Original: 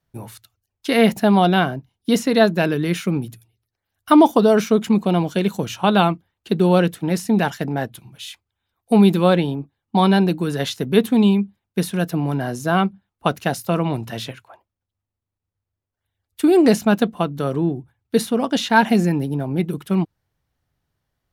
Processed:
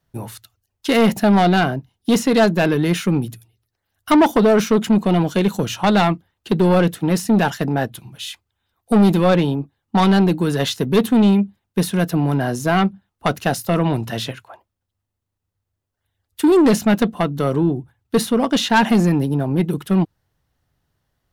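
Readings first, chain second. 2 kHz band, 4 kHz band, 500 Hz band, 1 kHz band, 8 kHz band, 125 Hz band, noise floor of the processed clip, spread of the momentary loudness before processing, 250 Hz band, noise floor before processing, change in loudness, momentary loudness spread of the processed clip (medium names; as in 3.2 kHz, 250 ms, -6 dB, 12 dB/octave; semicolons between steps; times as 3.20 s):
+1.0 dB, +1.5 dB, +0.5 dB, +0.5 dB, +3.5 dB, +2.5 dB, -79 dBFS, 12 LU, +1.5 dB, -84 dBFS, +1.0 dB, 11 LU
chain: self-modulated delay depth 0.07 ms; band-stop 2.3 kHz, Q 19; saturation -13 dBFS, distortion -11 dB; trim +4.5 dB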